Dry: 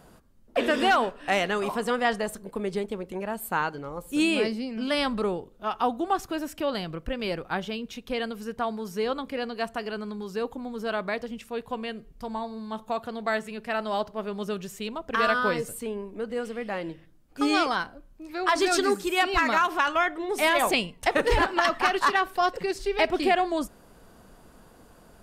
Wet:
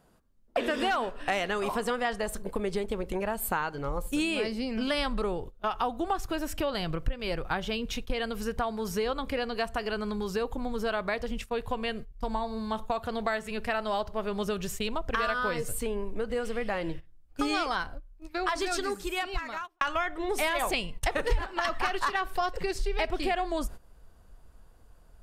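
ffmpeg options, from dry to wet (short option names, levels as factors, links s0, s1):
-filter_complex "[0:a]asplit=2[s0][s1];[s0]atrim=end=19.81,asetpts=PTS-STARTPTS,afade=t=out:st=17.72:d=2.09[s2];[s1]atrim=start=19.81,asetpts=PTS-STARTPTS,afade=t=in:d=0.004:c=hsin[s3];[s2][s3]concat=n=2:v=0:a=1,agate=range=0.141:threshold=0.00794:ratio=16:detection=peak,asubboost=boost=6.5:cutoff=81,acompressor=threshold=0.02:ratio=4,volume=2.11"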